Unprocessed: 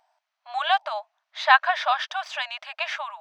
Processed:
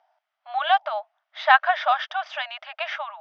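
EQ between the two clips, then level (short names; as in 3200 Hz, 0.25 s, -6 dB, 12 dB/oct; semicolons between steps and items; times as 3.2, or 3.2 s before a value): air absorption 190 m; speaker cabinet 500–6100 Hz, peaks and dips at 1000 Hz -8 dB, 1700 Hz -4 dB, 2500 Hz -6 dB, 4200 Hz -8 dB; +6.0 dB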